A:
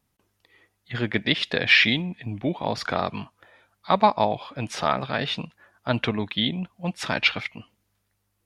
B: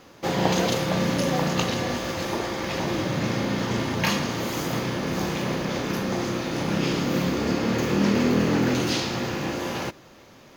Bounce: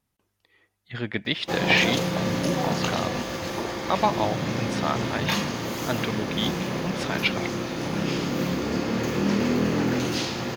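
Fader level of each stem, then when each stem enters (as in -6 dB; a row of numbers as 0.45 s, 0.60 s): -4.0 dB, -2.0 dB; 0.00 s, 1.25 s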